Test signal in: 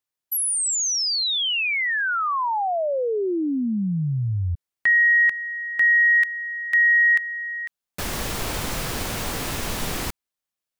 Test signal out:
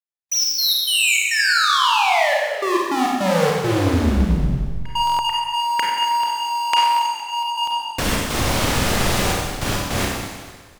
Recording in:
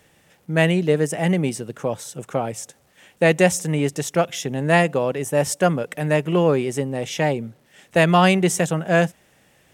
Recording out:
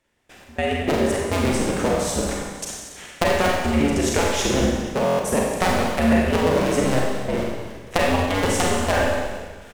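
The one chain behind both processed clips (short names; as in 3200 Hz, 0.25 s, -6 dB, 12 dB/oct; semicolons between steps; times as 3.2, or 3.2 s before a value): cycle switcher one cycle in 2, inverted; high shelf 11000 Hz -9.5 dB; compressor 10:1, threshold -28 dBFS; step gate "..x.x.xx.xxxxxxx" 103 bpm -24 dB; on a send: frequency-shifting echo 0.231 s, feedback 38%, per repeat -49 Hz, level -14.5 dB; on the sum: Schroeder reverb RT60 1.3 s, combs from 31 ms, DRR -2.5 dB; stuck buffer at 5.05, samples 1024, times 5; gain +8.5 dB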